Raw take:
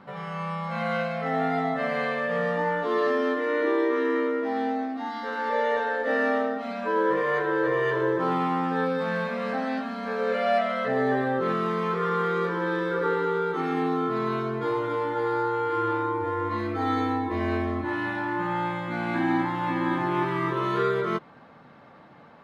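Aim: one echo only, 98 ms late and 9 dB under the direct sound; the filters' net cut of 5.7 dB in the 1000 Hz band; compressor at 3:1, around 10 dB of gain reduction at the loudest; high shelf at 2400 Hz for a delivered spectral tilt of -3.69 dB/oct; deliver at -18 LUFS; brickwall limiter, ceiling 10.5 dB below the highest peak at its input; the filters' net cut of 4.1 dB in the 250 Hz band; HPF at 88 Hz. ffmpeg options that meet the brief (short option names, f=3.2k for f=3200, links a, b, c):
-af "highpass=88,equalizer=f=250:t=o:g=-5,equalizer=f=1k:t=o:g=-9,highshelf=f=2.4k:g=7.5,acompressor=threshold=-37dB:ratio=3,alimiter=level_in=12dB:limit=-24dB:level=0:latency=1,volume=-12dB,aecho=1:1:98:0.355,volume=25dB"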